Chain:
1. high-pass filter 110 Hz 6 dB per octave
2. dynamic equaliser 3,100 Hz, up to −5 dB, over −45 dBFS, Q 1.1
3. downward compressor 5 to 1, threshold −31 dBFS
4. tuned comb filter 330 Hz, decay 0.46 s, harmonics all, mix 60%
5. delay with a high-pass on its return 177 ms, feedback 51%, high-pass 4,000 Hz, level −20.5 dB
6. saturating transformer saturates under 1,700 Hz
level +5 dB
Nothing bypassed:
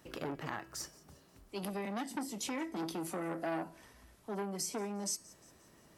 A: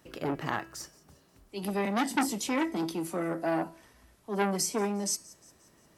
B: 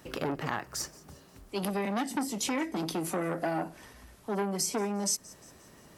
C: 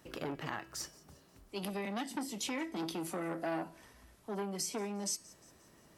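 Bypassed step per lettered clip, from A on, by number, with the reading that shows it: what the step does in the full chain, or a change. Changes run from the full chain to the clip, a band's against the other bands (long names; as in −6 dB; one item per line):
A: 3, average gain reduction 6.0 dB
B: 4, change in integrated loudness +7.0 LU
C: 2, 4 kHz band +2.0 dB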